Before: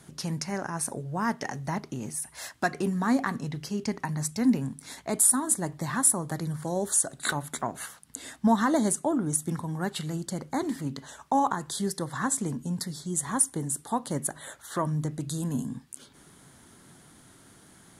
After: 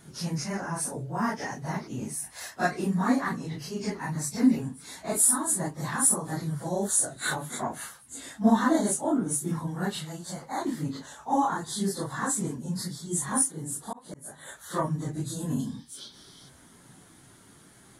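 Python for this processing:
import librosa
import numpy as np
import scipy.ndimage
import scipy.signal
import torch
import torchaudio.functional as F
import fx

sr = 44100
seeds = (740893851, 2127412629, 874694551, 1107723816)

y = fx.phase_scramble(x, sr, seeds[0], window_ms=100)
y = fx.low_shelf_res(y, sr, hz=520.0, db=-6.5, q=1.5, at=(9.97, 10.65))
y = fx.auto_swell(y, sr, attack_ms=455.0, at=(13.51, 14.47), fade=0.02)
y = fx.spec_box(y, sr, start_s=15.6, length_s=0.89, low_hz=3000.0, high_hz=6200.0, gain_db=12)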